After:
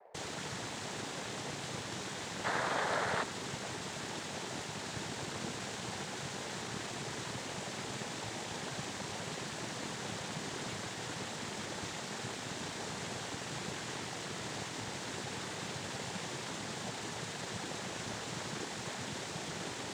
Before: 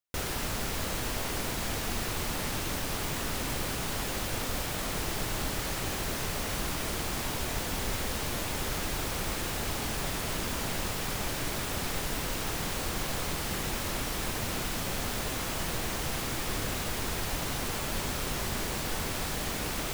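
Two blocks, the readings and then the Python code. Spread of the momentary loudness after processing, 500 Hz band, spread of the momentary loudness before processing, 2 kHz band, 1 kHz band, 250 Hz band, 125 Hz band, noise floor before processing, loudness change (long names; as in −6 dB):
3 LU, −5.0 dB, 0 LU, −5.0 dB, −4.5 dB, −6.5 dB, −8.5 dB, −34 dBFS, −7.5 dB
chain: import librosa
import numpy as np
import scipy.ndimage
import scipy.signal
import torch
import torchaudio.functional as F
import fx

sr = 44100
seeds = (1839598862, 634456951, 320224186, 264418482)

p1 = fx.spec_box(x, sr, start_s=2.44, length_s=0.78, low_hz=470.0, high_hz=1900.0, gain_db=12)
p2 = p1 + 10.0 ** (-49.0 / 20.0) * np.sin(2.0 * np.pi * 730.0 * np.arange(len(p1)) / sr)
p3 = fx.noise_vocoder(p2, sr, seeds[0], bands=6)
p4 = np.sign(p3) * np.maximum(np.abs(p3) - 10.0 ** (-47.5 / 20.0), 0.0)
p5 = p3 + F.gain(torch.from_numpy(p4), -5.0).numpy()
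y = F.gain(torch.from_numpy(p5), -9.0).numpy()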